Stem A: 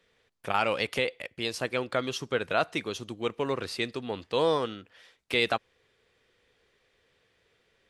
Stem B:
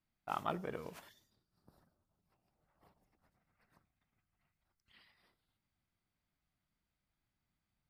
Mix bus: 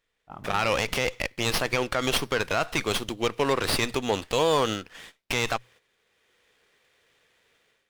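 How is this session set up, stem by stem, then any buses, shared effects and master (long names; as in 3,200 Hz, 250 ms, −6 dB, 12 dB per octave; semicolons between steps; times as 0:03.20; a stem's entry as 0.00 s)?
0.0 dB, 0.00 s, no send, spectral tilt +2.5 dB per octave; mains-hum notches 60/120 Hz; windowed peak hold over 5 samples
−2.5 dB, 0.00 s, no send, spectral tilt −4 dB per octave; automatic ducking −20 dB, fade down 1.45 s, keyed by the first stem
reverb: not used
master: automatic gain control gain up to 13.5 dB; noise gate −46 dBFS, range −11 dB; brickwall limiter −12.5 dBFS, peak gain reduction 11.5 dB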